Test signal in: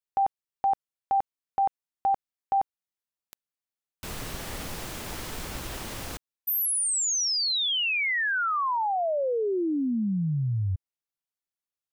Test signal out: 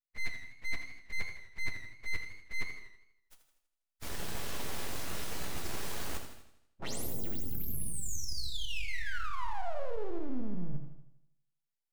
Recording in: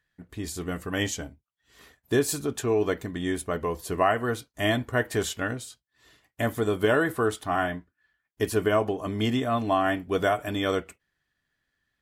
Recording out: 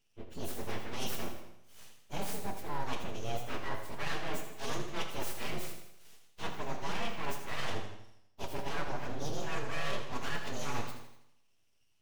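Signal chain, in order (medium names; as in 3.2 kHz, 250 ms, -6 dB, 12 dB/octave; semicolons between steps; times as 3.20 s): frequency axis rescaled in octaves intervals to 124%; reverse; compression 5:1, threshold -40 dBFS; reverse; full-wave rectifier; gated-style reverb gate 290 ms falling, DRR 6 dB; modulated delay 81 ms, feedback 50%, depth 75 cents, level -10 dB; trim +6 dB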